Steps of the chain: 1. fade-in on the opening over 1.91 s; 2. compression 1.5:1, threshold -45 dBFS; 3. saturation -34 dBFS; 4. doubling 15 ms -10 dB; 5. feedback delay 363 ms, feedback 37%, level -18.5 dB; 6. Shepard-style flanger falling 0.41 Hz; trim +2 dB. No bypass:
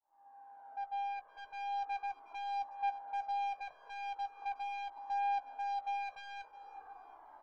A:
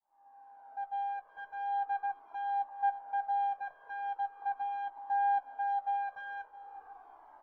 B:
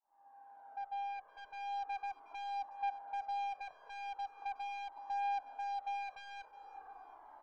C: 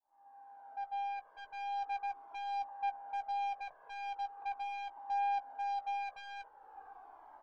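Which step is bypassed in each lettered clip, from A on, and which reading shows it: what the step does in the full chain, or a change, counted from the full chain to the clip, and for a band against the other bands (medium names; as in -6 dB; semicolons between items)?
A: 3, distortion -14 dB; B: 4, momentary loudness spread change -1 LU; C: 5, momentary loudness spread change +2 LU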